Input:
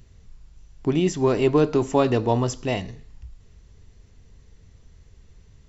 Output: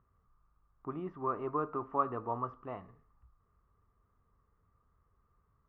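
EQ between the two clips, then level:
resonant band-pass 1,200 Hz, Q 14
high-frequency loss of the air 300 metres
spectral tilt −4.5 dB per octave
+8.0 dB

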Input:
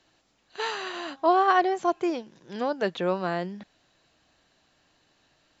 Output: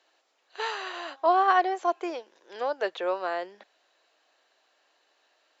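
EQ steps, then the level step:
high-pass filter 420 Hz 24 dB per octave
high-shelf EQ 4,300 Hz −5.5 dB
0.0 dB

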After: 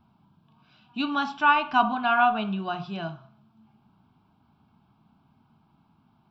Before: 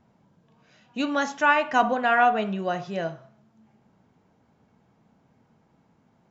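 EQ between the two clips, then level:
mains-hum notches 60/120/180 Hz
phaser with its sweep stopped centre 1,900 Hz, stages 6
+2.5 dB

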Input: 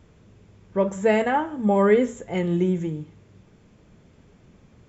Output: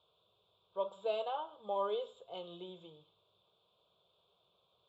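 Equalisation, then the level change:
pair of resonant band-passes 1,800 Hz, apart 2 octaves
phaser with its sweep stopped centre 1,300 Hz, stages 8
+3.0 dB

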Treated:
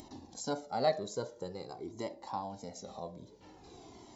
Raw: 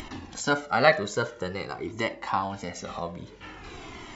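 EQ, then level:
high-pass filter 130 Hz 6 dB per octave
flat-topped bell 1,900 Hz −14.5 dB
−8.0 dB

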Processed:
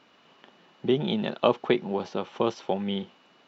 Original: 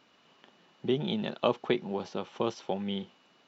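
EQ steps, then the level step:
low-shelf EQ 150 Hz −4 dB
high-shelf EQ 5,700 Hz −9 dB
+5.5 dB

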